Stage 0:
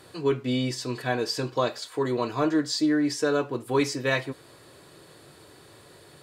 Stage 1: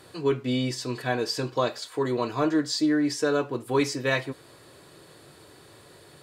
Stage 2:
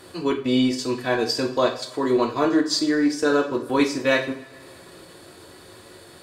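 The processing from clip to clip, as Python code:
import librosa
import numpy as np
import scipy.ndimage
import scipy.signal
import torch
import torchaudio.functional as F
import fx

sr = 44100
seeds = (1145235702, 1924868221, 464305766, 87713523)

y1 = x
y2 = fx.transient(y1, sr, attack_db=-2, sustain_db=-8)
y2 = fx.rev_double_slope(y2, sr, seeds[0], early_s=0.41, late_s=2.3, knee_db=-20, drr_db=3.5)
y2 = y2 * librosa.db_to_amplitude(4.5)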